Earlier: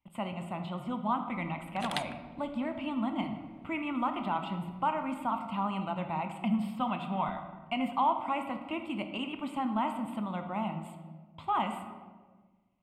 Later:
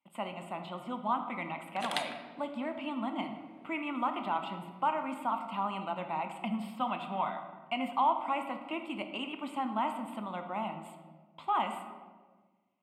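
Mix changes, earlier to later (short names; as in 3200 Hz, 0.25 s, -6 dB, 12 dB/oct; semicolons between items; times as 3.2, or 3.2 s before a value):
background: send +8.5 dB; master: add HPF 280 Hz 12 dB/oct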